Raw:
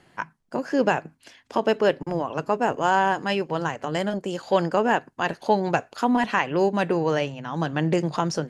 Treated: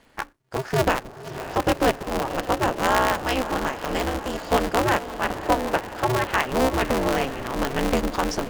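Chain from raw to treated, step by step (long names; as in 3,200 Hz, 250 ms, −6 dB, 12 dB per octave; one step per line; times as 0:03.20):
0:05.12–0:06.33: band-pass filter 260–2,700 Hz
feedback delay with all-pass diffusion 573 ms, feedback 60%, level −12 dB
ring modulator with a square carrier 130 Hz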